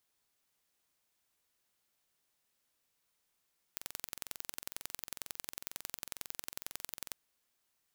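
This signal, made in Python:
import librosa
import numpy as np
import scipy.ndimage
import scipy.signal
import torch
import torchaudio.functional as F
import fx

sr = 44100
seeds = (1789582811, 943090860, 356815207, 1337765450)

y = fx.impulse_train(sr, length_s=3.38, per_s=22.1, accent_every=2, level_db=-11.0)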